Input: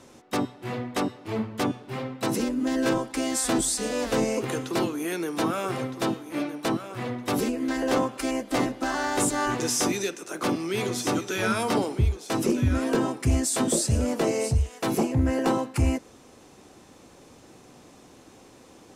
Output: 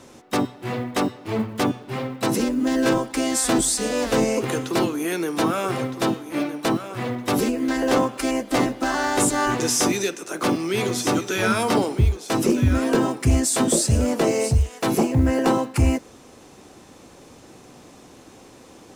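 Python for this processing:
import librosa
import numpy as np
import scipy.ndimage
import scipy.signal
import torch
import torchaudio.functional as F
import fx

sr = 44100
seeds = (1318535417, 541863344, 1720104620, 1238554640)

y = fx.block_float(x, sr, bits=7)
y = y * 10.0 ** (4.5 / 20.0)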